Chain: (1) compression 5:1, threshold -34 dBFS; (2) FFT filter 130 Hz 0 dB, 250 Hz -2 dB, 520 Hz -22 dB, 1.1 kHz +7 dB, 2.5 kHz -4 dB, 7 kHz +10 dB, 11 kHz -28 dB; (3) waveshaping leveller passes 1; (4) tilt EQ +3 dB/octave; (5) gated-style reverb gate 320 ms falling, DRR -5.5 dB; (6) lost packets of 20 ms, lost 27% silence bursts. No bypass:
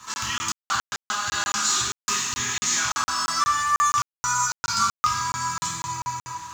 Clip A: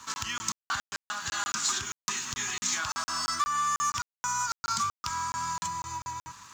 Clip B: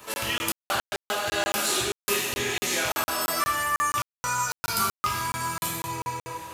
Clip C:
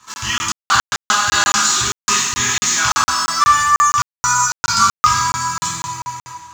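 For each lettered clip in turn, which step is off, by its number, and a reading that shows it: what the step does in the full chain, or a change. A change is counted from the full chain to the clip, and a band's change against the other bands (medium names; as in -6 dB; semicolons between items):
5, crest factor change +4.5 dB; 2, 500 Hz band +16.0 dB; 1, mean gain reduction 7.0 dB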